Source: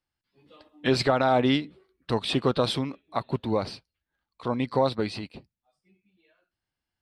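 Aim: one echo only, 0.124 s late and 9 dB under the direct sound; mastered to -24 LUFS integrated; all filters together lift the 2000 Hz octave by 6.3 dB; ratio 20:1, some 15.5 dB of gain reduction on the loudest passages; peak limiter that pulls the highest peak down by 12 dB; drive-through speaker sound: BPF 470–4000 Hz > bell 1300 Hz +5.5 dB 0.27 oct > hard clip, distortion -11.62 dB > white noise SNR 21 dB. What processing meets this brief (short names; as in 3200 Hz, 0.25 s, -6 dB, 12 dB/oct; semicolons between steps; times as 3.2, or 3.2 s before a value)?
bell 2000 Hz +7.5 dB; compressor 20:1, threshold -32 dBFS; limiter -30.5 dBFS; BPF 470–4000 Hz; bell 1300 Hz +5.5 dB 0.27 oct; echo 0.124 s -9 dB; hard clip -39 dBFS; white noise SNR 21 dB; gain +22 dB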